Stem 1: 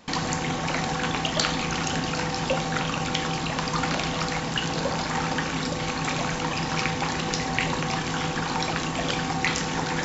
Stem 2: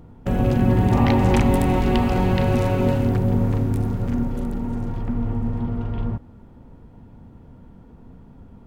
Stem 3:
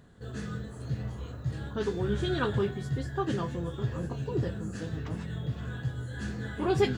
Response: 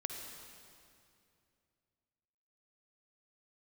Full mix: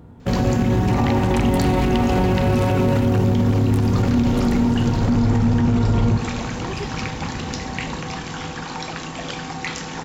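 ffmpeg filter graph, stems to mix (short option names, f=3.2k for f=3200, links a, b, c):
-filter_complex "[0:a]acontrast=42,adelay=200,volume=-8.5dB[a];[1:a]highpass=49,dynaudnorm=f=370:g=7:m=14dB,volume=-0.5dB,asplit=2[b][c];[c]volume=-7dB[d];[2:a]volume=-7.5dB,asplit=3[e][f][g];[e]atrim=end=2.94,asetpts=PTS-STARTPTS,afade=t=out:st=2.936:d=0.004:c=hsin[h];[f]atrim=start=2.94:end=3.6,asetpts=PTS-STARTPTS,volume=0[i];[g]atrim=start=3.6,asetpts=PTS-STARTPTS,afade=t=in:d=0.004:c=hsin[j];[h][i][j]concat=n=3:v=0:a=1[k];[3:a]atrim=start_sample=2205[l];[d][l]afir=irnorm=-1:irlink=0[m];[a][b][k][m]amix=inputs=4:normalize=0,alimiter=limit=-10dB:level=0:latency=1:release=56"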